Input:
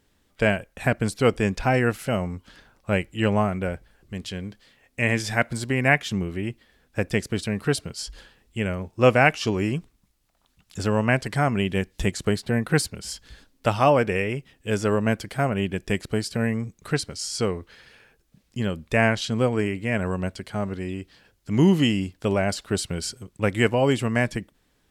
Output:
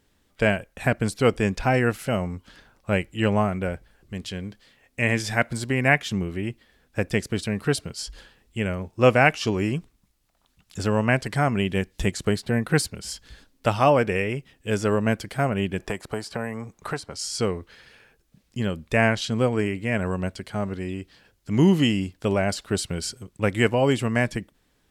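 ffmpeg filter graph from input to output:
-filter_complex "[0:a]asettb=1/sr,asplit=3[a][b][c];[a]atrim=end=15.794[d];[b]atrim=start=15.79:end=17.17,asetpts=PTS-STARTPTS,afade=t=in:d=0.004:c=qsin,afade=t=out:st=1.376:d=0.004:c=qsin,equalizer=f=900:w=0.79:g=13.5,acrossover=split=360|6200[e][f][g];[e]acompressor=threshold=-33dB:ratio=4[h];[f]acompressor=threshold=-31dB:ratio=4[i];[g]acompressor=threshold=-45dB:ratio=4[j];[h][i][j]amix=inputs=3:normalize=0[k];[c]atrim=start=17.166[l];[d][k]acrossfade=d=0.004:c1=hsin:c2=qsin[m];[m][l]acrossfade=d=0.004:c1=qsin:c2=hsin"

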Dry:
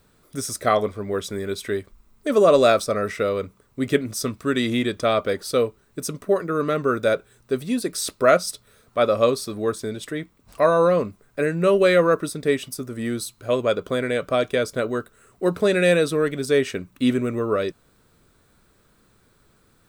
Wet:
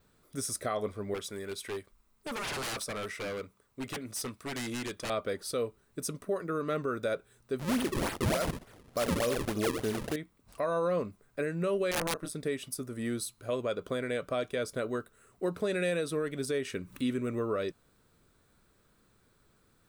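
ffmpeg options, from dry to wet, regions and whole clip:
-filter_complex "[0:a]asettb=1/sr,asplit=3[a][b][c];[a]atrim=end=1.144[d];[b]atrim=start=1.14:end=5.1,asetpts=PTS-STARTPTS,afade=t=in:d=0.004:c=qsin,afade=t=out:st=3.956:d=0.004:c=qsin,lowshelf=f=400:g=-7,aeval=exprs='0.0668*(abs(mod(val(0)/0.0668+3,4)-2)-1)':c=same[e];[c]atrim=start=5.096[f];[d][e]acrossfade=d=0.004:c1=hsin:c2=qsin[g];[g][f]acrossfade=d=0.004:c1=qsin:c2=hsin,asettb=1/sr,asplit=3[h][i][j];[h]atrim=end=7.594[k];[i]atrim=start=7.59:end=10.16,asetpts=PTS-STARTPTS,afade=t=in:d=0.004:c=qsin,afade=t=out:st=2.566:d=0.004:c=qsin,aecho=1:1:77:0.335,atrim=end_sample=113337,acrusher=samples=35:mix=1:aa=0.000001:lfo=1:lforange=56:lforate=3.4,acontrast=78[l];[j]atrim=start=10.156[m];[k][l]acrossfade=d=0.004:c1=hsin:c2=qsin[n];[n][m]acrossfade=d=0.004:c1=qsin:c2=hsin,asettb=1/sr,asplit=3[o][p][q];[o]atrim=end=11.914[r];[p]atrim=start=11.91:end=12.33,asetpts=PTS-STARTPTS,afade=t=in:d=0.004:c=qsin,afade=t=out:st=0.416:d=0.004:c=qsin,asplit=2[s][t];[t]adelay=24,volume=-7.5dB[u];[s][u]amix=inputs=2:normalize=0,atrim=end_sample=18522,tremolo=f=160:d=0.857,aeval=exprs='(mod(3.98*val(0)+1,2)-1)/3.98':c=same[v];[q]atrim=start=12.326[w];[r][v]acrossfade=d=0.004:c1=hsin:c2=qsin[x];[x][w]acrossfade=d=0.004:c1=qsin:c2=hsin,asettb=1/sr,asplit=3[y][z][aa];[y]atrim=end=16.654[ab];[z]atrim=start=16.65:end=17.27,asetpts=PTS-STARTPTS,afade=t=in:d=0.004:c=qsin,afade=t=out:st=0.616:d=0.004:c=qsin,equalizer=f=700:w=6:g=-11.5,acompressor=mode=upward:threshold=-27dB:ratio=2.5:attack=3.2:release=140:knee=2.83:detection=peak[ac];[aa]atrim=start=17.266[ad];[ab][ac]acrossfade=d=0.004:c1=hsin:c2=qsin[ae];[ae][ad]acrossfade=d=0.004:c1=qsin:c2=hsin,adynamicequalizer=threshold=0.00251:dfrequency=9900:dqfactor=4.1:tfrequency=9900:tqfactor=4.1:attack=5:release=100:ratio=0.375:range=3:mode=boostabove:tftype=bell,alimiter=limit=-15dB:level=0:latency=1:release=172,volume=-7.5dB"

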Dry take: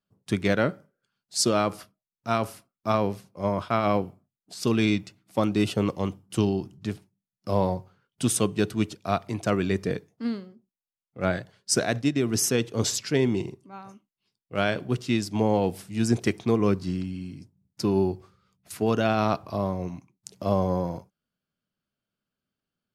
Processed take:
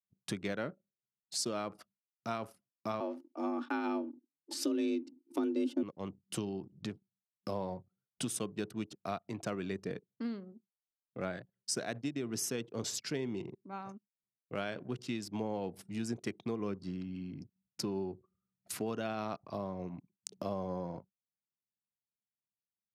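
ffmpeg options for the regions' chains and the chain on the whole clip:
-filter_complex "[0:a]asettb=1/sr,asplit=3[a][b][c];[a]atrim=end=3.004[d];[b]atrim=start=3:end=5.83,asetpts=PTS-STARTPTS,afade=t=in:d=0.004:c=qsin,afade=t=out:st=2.826:d=0.004:c=qsin,asubboost=boost=11.5:cutoff=170,afreqshift=150,aecho=1:1:3.4:0.49,atrim=end_sample=124803[e];[c]atrim=start=5.826[f];[d][e]acrossfade=d=0.004:c1=hsin:c2=qsin[g];[g][f]acrossfade=d=0.004:c1=qsin:c2=hsin,acompressor=threshold=-39dB:ratio=3,anlmdn=0.00251,highpass=130,volume=1dB"

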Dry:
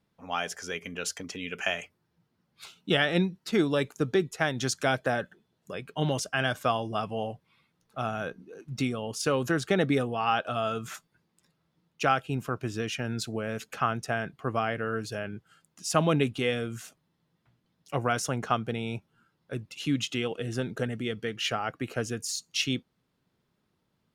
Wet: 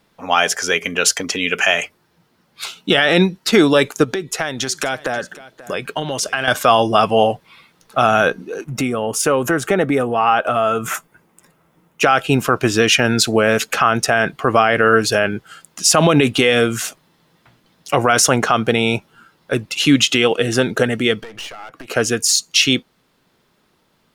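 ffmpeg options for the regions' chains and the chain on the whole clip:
-filter_complex "[0:a]asettb=1/sr,asplit=3[a][b][c];[a]atrim=end=4.044[d];[b]atrim=start=4.04:end=6.48,asetpts=PTS-STARTPTS,afade=t=in:d=0.004:c=qsin,afade=t=out:st=2.436:d=0.004:c=qsin,acompressor=threshold=-36dB:ratio=6:attack=3.2:release=140:knee=1:detection=peak,aecho=1:1:534:0.119,atrim=end_sample=107604[e];[c]atrim=start=6.476[f];[d][e]acrossfade=d=0.004:c1=hsin:c2=qsin[g];[g][f]acrossfade=d=0.004:c1=qsin:c2=hsin,asettb=1/sr,asplit=3[h][i][j];[h]atrim=end=8.644[k];[i]atrim=start=8.64:end=12.03,asetpts=PTS-STARTPTS,afade=t=in:d=0.004:c=qsin,afade=t=out:st=3.386:d=0.004:c=qsin,equalizer=f=4.3k:w=1.3:g=-14.5,bandreject=f=1.7k:w=23,acompressor=threshold=-37dB:ratio=2:attack=3.2:release=140:knee=1:detection=peak[l];[j]atrim=start=12.026[m];[k][l]acrossfade=d=0.004:c1=hsin:c2=qsin[n];[n][m]acrossfade=d=0.004:c1=qsin:c2=hsin,asettb=1/sr,asplit=3[o][p][q];[o]atrim=end=21.214[r];[p]atrim=start=21.21:end=21.9,asetpts=PTS-STARTPTS,afade=t=in:d=0.004:c=qsin,afade=t=out:st=0.686:d=0.004:c=qsin,acompressor=threshold=-43dB:ratio=16:attack=3.2:release=140:knee=1:detection=peak,aeval=exprs='clip(val(0),-1,0.00237)':c=same[s];[q]atrim=start=21.896[t];[r][s]acrossfade=d=0.004:c1=hsin:c2=qsin[u];[u][t]acrossfade=d=0.004:c1=qsin:c2=hsin,equalizer=f=99:t=o:w=2.8:g=-10,dynaudnorm=f=860:g=13:m=3dB,alimiter=level_in=19.5dB:limit=-1dB:release=50:level=0:latency=1,volume=-1dB"

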